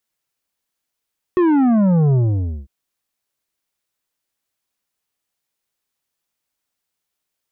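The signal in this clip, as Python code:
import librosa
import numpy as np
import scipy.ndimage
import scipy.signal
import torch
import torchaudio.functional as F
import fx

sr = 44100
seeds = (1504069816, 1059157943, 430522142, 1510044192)

y = fx.sub_drop(sr, level_db=-12.5, start_hz=370.0, length_s=1.3, drive_db=9.0, fade_s=0.53, end_hz=65.0)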